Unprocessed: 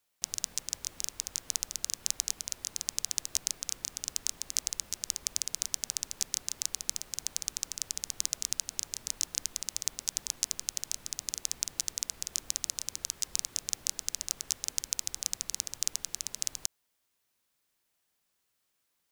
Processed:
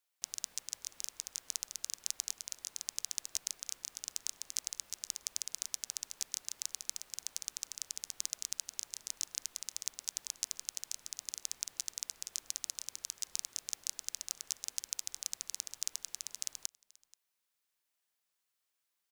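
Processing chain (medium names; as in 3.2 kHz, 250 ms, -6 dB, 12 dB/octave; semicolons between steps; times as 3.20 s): bass shelf 380 Hz -11.5 dB; delay 482 ms -24 dB; trim -6 dB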